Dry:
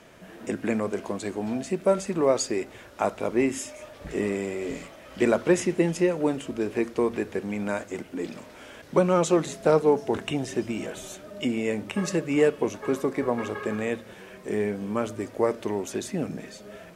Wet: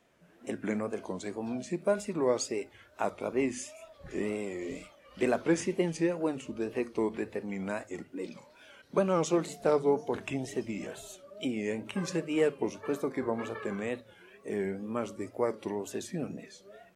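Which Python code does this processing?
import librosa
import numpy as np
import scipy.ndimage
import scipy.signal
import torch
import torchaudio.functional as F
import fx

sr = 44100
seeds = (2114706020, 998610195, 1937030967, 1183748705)

y = fx.noise_reduce_blind(x, sr, reduce_db=10)
y = fx.wow_flutter(y, sr, seeds[0], rate_hz=2.1, depth_cents=120.0)
y = fx.hum_notches(y, sr, base_hz=50, count=3)
y = y * librosa.db_to_amplitude(-6.0)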